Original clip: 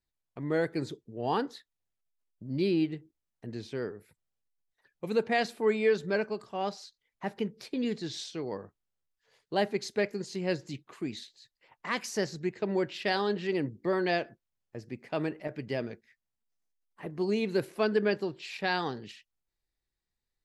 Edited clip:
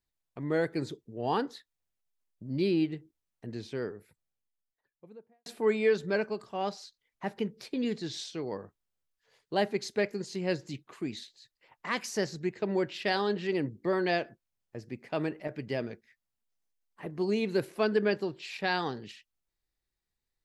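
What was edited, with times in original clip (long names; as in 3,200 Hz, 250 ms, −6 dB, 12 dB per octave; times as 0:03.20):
0:03.85–0:05.46: fade out and dull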